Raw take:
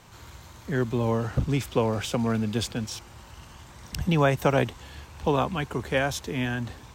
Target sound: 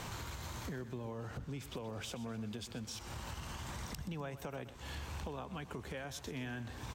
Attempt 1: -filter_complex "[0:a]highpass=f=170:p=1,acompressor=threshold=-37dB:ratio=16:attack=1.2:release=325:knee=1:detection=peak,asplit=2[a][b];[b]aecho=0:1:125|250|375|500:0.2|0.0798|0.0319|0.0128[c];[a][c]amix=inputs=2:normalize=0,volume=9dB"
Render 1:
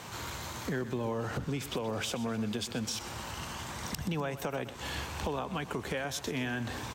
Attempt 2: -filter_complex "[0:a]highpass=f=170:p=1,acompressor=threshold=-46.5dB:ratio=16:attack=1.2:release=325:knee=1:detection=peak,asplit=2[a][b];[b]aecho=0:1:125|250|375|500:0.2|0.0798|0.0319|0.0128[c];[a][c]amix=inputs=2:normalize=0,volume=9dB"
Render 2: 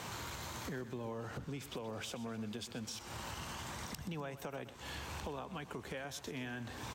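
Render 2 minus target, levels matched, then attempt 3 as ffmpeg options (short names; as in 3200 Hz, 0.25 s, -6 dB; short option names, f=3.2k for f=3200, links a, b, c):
125 Hz band -3.0 dB
-filter_complex "[0:a]acompressor=threshold=-46.5dB:ratio=16:attack=1.2:release=325:knee=1:detection=peak,asplit=2[a][b];[b]aecho=0:1:125|250|375|500:0.2|0.0798|0.0319|0.0128[c];[a][c]amix=inputs=2:normalize=0,volume=9dB"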